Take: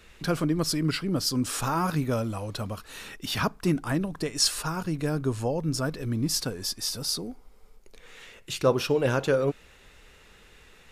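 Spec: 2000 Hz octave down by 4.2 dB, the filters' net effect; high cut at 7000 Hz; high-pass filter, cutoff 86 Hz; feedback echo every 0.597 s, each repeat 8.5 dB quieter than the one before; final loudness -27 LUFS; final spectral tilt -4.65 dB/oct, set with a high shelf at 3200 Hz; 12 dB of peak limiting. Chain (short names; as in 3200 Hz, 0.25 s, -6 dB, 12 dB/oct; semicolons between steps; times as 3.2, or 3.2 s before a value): HPF 86 Hz; LPF 7000 Hz; bell 2000 Hz -7.5 dB; high shelf 3200 Hz +3.5 dB; limiter -21 dBFS; feedback echo 0.597 s, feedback 38%, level -8.5 dB; gain +4 dB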